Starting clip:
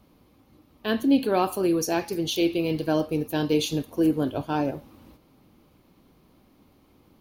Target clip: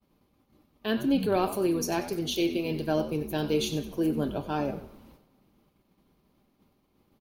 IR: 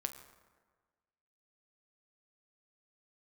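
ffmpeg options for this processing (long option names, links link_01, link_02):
-filter_complex "[0:a]asplit=5[link_01][link_02][link_03][link_04][link_05];[link_02]adelay=94,afreqshift=-88,volume=-13dB[link_06];[link_03]adelay=188,afreqshift=-176,volume=-21dB[link_07];[link_04]adelay=282,afreqshift=-264,volume=-28.9dB[link_08];[link_05]adelay=376,afreqshift=-352,volume=-36.9dB[link_09];[link_01][link_06][link_07][link_08][link_09]amix=inputs=5:normalize=0,agate=range=-33dB:threshold=-52dB:ratio=3:detection=peak,asplit=2[link_10][link_11];[1:a]atrim=start_sample=2205,adelay=5[link_12];[link_11][link_12]afir=irnorm=-1:irlink=0,volume=-11dB[link_13];[link_10][link_13]amix=inputs=2:normalize=0,volume=-3.5dB"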